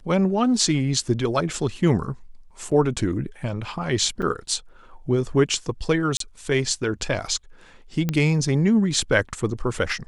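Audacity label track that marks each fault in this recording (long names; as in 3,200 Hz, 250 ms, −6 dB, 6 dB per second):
2.710000	2.720000	drop-out 5.3 ms
4.220000	4.230000	drop-out 5.7 ms
6.170000	6.200000	drop-out 33 ms
8.090000	8.090000	click −10 dBFS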